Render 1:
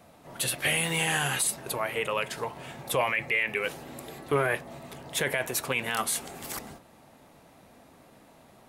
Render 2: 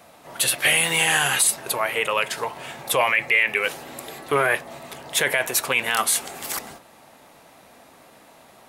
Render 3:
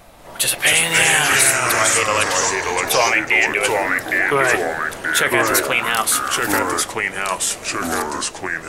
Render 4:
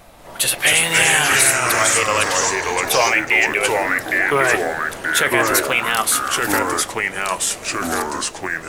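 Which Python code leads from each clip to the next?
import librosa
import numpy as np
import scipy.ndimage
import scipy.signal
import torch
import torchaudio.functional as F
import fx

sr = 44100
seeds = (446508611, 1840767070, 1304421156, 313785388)

y1 = fx.low_shelf(x, sr, hz=360.0, db=-11.5)
y1 = y1 * 10.0 ** (8.5 / 20.0)
y2 = fx.echo_pitch(y1, sr, ms=187, semitones=-3, count=3, db_per_echo=-3.0)
y2 = fx.dmg_noise_colour(y2, sr, seeds[0], colour='brown', level_db=-52.0)
y2 = y2 * 10.0 ** (3.0 / 20.0)
y3 = fx.block_float(y2, sr, bits=7)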